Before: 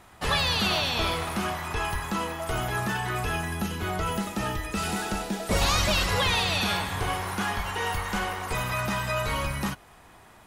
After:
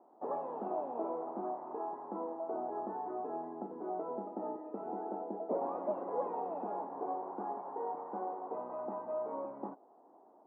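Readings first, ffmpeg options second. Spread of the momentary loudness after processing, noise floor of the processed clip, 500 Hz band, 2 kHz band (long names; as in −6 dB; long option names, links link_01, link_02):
5 LU, −62 dBFS, −4.5 dB, below −35 dB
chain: -af "asuperpass=centerf=480:order=8:qfactor=0.75,volume=-4.5dB"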